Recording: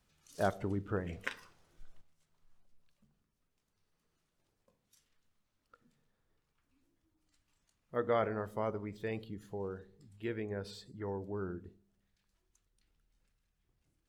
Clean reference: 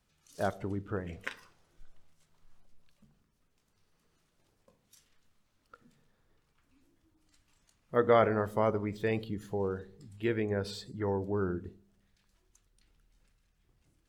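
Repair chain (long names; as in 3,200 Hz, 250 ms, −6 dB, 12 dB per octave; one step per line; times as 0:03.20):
level 0 dB, from 0:02.01 +7.5 dB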